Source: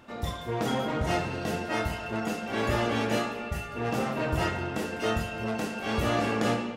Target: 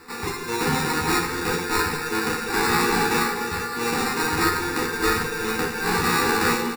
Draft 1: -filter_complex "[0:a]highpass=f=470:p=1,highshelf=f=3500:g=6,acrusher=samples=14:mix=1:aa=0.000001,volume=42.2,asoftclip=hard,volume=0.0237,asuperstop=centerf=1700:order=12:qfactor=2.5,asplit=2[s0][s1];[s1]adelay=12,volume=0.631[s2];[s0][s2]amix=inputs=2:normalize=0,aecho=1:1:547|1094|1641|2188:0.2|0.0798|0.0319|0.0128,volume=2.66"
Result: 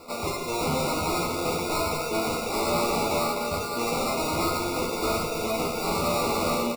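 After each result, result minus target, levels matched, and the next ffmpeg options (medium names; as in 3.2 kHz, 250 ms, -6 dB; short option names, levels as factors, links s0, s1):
overload inside the chain: distortion +15 dB; echo 162 ms late; 2 kHz band -7.0 dB
-filter_complex "[0:a]highpass=f=470:p=1,highshelf=f=3500:g=6,acrusher=samples=14:mix=1:aa=0.000001,volume=13.3,asoftclip=hard,volume=0.075,asuperstop=centerf=1700:order=12:qfactor=2.5,asplit=2[s0][s1];[s1]adelay=12,volume=0.631[s2];[s0][s2]amix=inputs=2:normalize=0,aecho=1:1:547|1094|1641|2188:0.2|0.0798|0.0319|0.0128,volume=2.66"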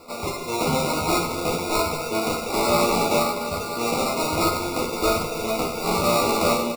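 echo 162 ms late; 2 kHz band -7.0 dB
-filter_complex "[0:a]highpass=f=470:p=1,highshelf=f=3500:g=6,acrusher=samples=14:mix=1:aa=0.000001,volume=13.3,asoftclip=hard,volume=0.075,asuperstop=centerf=1700:order=12:qfactor=2.5,asplit=2[s0][s1];[s1]adelay=12,volume=0.631[s2];[s0][s2]amix=inputs=2:normalize=0,aecho=1:1:385|770|1155|1540:0.2|0.0798|0.0319|0.0128,volume=2.66"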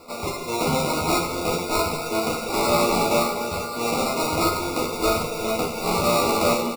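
2 kHz band -7.0 dB
-filter_complex "[0:a]highpass=f=470:p=1,highshelf=f=3500:g=6,acrusher=samples=14:mix=1:aa=0.000001,volume=13.3,asoftclip=hard,volume=0.075,asuperstop=centerf=610:order=12:qfactor=2.5,asplit=2[s0][s1];[s1]adelay=12,volume=0.631[s2];[s0][s2]amix=inputs=2:normalize=0,aecho=1:1:385|770|1155|1540:0.2|0.0798|0.0319|0.0128,volume=2.66"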